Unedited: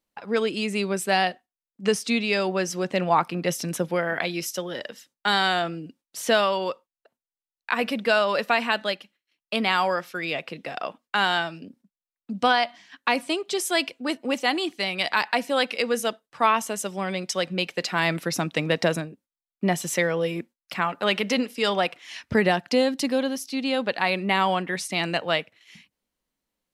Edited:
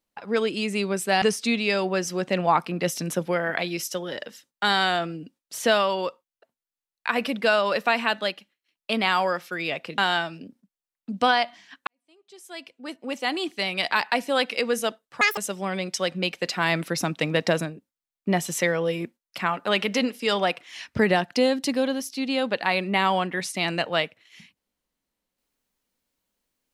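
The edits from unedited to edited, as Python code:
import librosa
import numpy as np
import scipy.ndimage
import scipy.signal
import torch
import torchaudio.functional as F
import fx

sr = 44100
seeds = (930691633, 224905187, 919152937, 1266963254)

y = fx.edit(x, sr, fx.cut(start_s=1.22, length_s=0.63),
    fx.cut(start_s=10.61, length_s=0.58),
    fx.fade_in_span(start_s=13.08, length_s=1.68, curve='qua'),
    fx.speed_span(start_s=16.42, length_s=0.31, speed=1.88), tone=tone)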